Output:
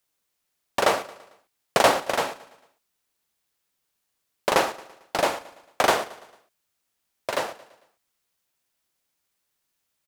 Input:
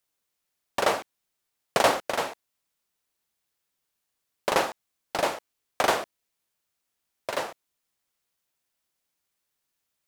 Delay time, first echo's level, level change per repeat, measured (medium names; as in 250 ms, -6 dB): 112 ms, -18.5 dB, -6.0 dB